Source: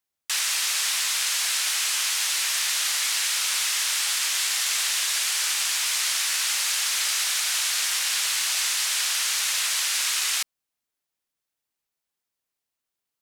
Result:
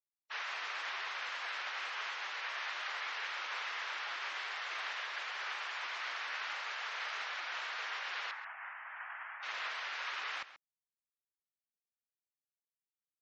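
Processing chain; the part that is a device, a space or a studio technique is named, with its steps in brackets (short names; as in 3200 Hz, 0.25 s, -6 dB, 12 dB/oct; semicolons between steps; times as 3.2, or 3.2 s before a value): 8.31–9.43 Chebyshev band-pass 760–1900 Hz, order 2; hearing-loss simulation (LPF 1500 Hz 12 dB/oct; expander -34 dBFS); spectral gate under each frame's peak -25 dB strong; outdoor echo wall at 23 m, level -14 dB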